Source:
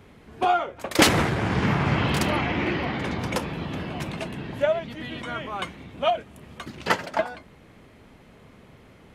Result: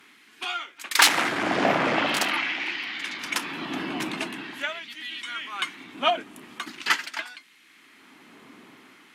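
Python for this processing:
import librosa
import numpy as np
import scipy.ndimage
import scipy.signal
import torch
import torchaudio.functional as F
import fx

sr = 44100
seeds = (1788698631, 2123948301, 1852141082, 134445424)

y = fx.low_shelf_res(x, sr, hz=400.0, db=10.5, q=3.0)
y = fx.fold_sine(y, sr, drive_db=13, ceiling_db=6.5)
y = fx.filter_lfo_highpass(y, sr, shape='sine', hz=0.44, low_hz=720.0, high_hz=2400.0, q=0.84)
y = y * librosa.db_to_amplitude(-11.0)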